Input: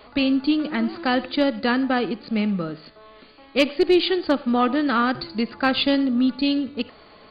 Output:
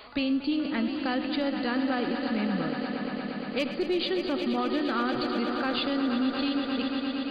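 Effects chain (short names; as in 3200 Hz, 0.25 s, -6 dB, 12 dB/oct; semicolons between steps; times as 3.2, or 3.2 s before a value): swelling echo 0.117 s, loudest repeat 5, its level -13 dB; limiter -14 dBFS, peak gain reduction 7.5 dB; mismatched tape noise reduction encoder only; gain -5.5 dB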